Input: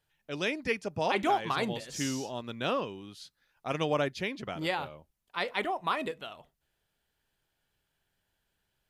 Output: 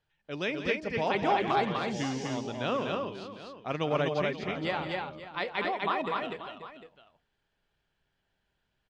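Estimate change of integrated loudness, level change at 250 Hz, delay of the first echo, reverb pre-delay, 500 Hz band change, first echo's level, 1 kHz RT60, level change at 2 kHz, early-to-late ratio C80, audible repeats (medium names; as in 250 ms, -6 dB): +1.0 dB, +2.0 dB, 171 ms, no reverb, +2.0 dB, -11.5 dB, no reverb, +1.0 dB, no reverb, 4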